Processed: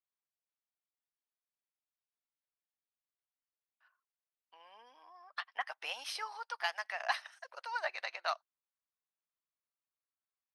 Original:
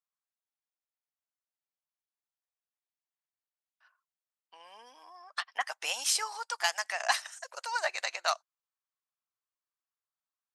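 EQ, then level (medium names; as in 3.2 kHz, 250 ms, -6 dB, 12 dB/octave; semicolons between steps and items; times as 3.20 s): boxcar filter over 6 samples; bass shelf 370 Hz -5 dB; -4.0 dB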